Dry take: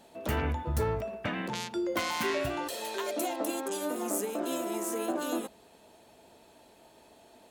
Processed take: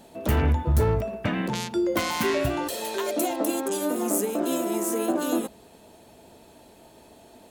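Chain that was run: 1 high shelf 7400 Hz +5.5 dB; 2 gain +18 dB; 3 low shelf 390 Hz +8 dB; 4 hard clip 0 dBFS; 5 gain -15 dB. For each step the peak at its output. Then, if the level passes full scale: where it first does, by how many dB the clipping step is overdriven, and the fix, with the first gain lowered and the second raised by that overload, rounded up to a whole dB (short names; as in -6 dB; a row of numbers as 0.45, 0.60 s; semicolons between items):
-14.5, +3.5, +5.0, 0.0, -15.0 dBFS; step 2, 5.0 dB; step 2 +13 dB, step 5 -10 dB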